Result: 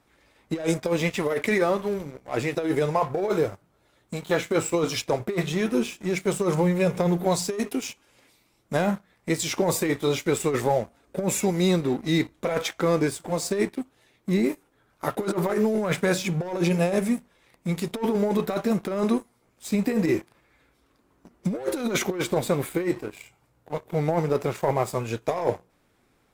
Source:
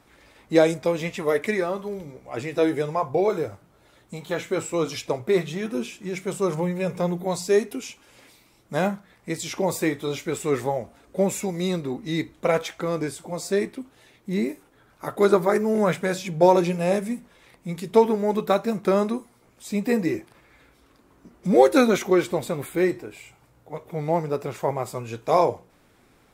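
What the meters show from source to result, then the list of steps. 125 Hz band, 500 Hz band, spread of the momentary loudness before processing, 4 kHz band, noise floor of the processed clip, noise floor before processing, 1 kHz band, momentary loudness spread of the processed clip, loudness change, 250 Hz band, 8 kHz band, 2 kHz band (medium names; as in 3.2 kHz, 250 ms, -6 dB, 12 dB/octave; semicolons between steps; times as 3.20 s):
+2.5 dB, -3.0 dB, 15 LU, +2.0 dB, -66 dBFS, -59 dBFS, -3.5 dB, 8 LU, -1.5 dB, 0.0 dB, +3.5 dB, +0.5 dB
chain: waveshaping leveller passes 2; compressor with a negative ratio -16 dBFS, ratio -0.5; trim -5.5 dB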